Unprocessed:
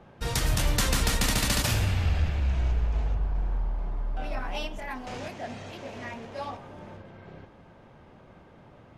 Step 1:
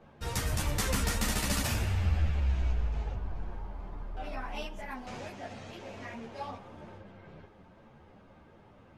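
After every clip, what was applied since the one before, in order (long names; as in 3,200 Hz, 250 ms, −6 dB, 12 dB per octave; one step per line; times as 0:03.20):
dynamic equaliser 3,800 Hz, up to −4 dB, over −46 dBFS, Q 1.2
string-ensemble chorus
level −1 dB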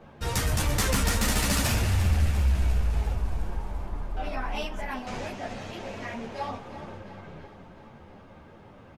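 soft clipping −22.5 dBFS, distortion −19 dB
on a send: repeating echo 350 ms, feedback 60%, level −13 dB
on the sum: level +6.5 dB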